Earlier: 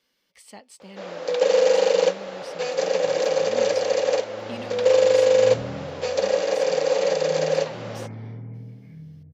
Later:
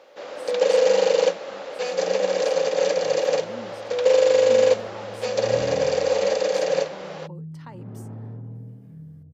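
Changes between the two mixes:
speech: add flat-topped bell 3,700 Hz −14 dB
first sound: entry −0.80 s
second sound: remove low-pass with resonance 2,200 Hz, resonance Q 13

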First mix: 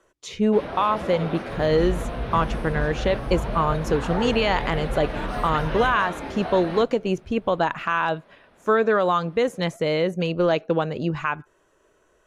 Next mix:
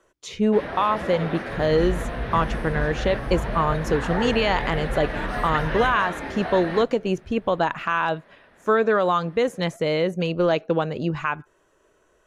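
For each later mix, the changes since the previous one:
first sound: add parametric band 1,800 Hz +8.5 dB 0.4 octaves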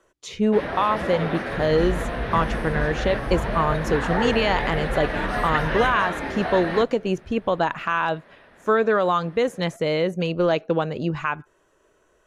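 first sound +3.0 dB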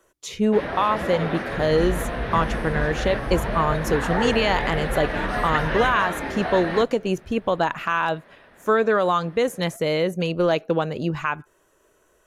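speech: remove high-frequency loss of the air 55 metres

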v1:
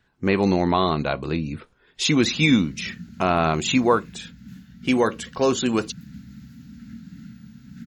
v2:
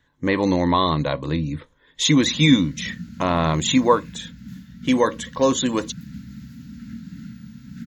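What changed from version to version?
speech: add EQ curve with evenly spaced ripples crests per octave 1.1, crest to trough 10 dB
background +4.0 dB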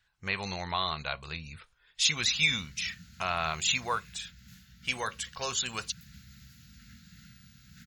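speech: remove EQ curve with evenly spaced ripples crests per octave 1.1, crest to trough 10 dB
master: add guitar amp tone stack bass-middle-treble 10-0-10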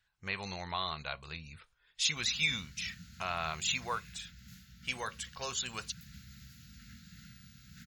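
speech −5.0 dB

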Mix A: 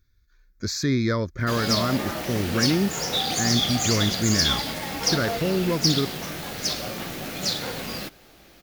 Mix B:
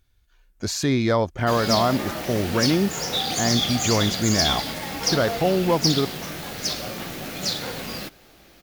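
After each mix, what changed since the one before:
speech: remove phaser with its sweep stopped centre 2,900 Hz, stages 6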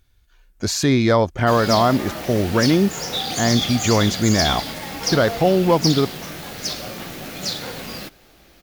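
speech +4.5 dB

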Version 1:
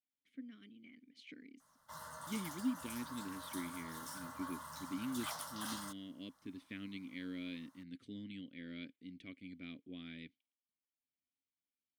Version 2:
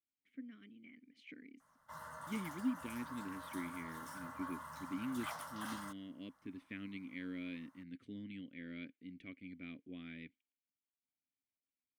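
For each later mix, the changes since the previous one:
master: add high shelf with overshoot 3,000 Hz −6.5 dB, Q 1.5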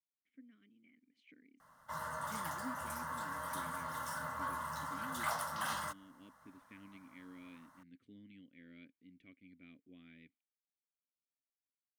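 speech −9.5 dB
background +8.0 dB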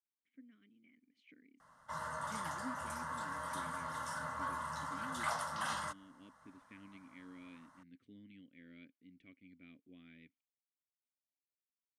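master: add low-pass filter 10,000 Hz 24 dB per octave

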